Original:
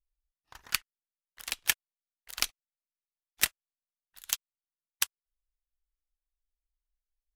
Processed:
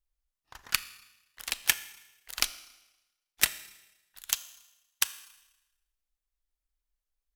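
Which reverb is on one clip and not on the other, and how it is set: Schroeder reverb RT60 1 s, combs from 27 ms, DRR 14.5 dB; gain +2 dB

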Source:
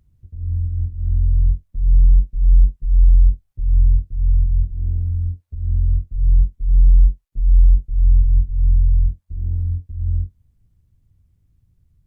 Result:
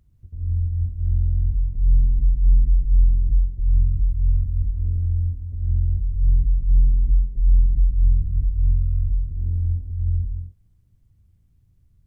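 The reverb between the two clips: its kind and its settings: non-linear reverb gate 0.27 s rising, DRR 6 dB; gain -1 dB

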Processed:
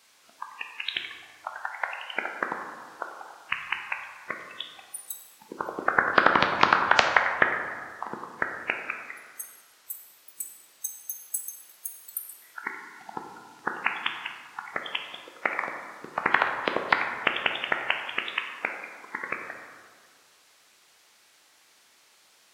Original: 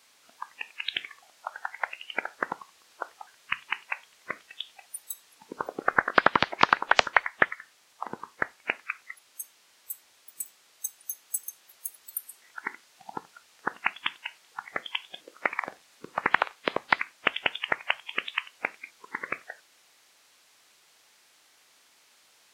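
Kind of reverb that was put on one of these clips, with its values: plate-style reverb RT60 1.9 s, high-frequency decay 0.45×, DRR 3 dB

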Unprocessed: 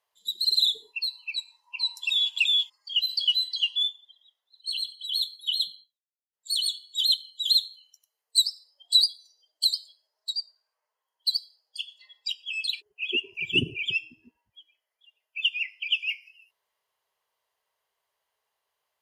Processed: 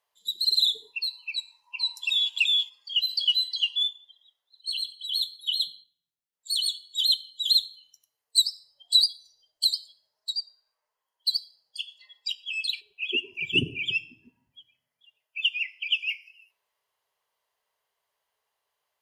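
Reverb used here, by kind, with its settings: shoebox room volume 2500 m³, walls furnished, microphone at 0.33 m

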